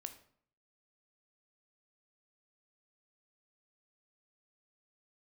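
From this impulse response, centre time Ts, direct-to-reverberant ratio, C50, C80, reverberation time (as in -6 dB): 9 ms, 7.5 dB, 12.0 dB, 15.5 dB, 0.60 s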